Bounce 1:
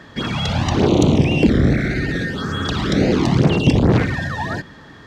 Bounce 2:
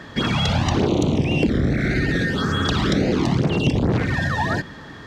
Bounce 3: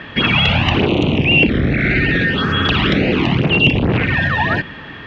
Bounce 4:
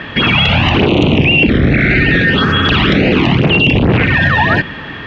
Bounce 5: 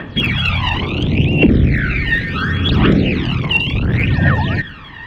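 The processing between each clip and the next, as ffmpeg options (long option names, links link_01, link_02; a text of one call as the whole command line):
ffmpeg -i in.wav -af "acompressor=threshold=-19dB:ratio=6,volume=3dB" out.wav
ffmpeg -i in.wav -af "lowpass=frequency=2700:width_type=q:width=4.5,volume=3.5dB" out.wav
ffmpeg -i in.wav -af "alimiter=limit=-9dB:level=0:latency=1:release=29,volume=6.5dB" out.wav
ffmpeg -i in.wav -af "aphaser=in_gain=1:out_gain=1:delay=1.1:decay=0.76:speed=0.7:type=triangular,volume=-10dB" out.wav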